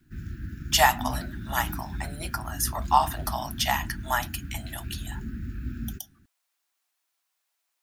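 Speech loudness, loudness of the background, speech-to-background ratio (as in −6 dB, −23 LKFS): −27.0 LKFS, −37.0 LKFS, 10.0 dB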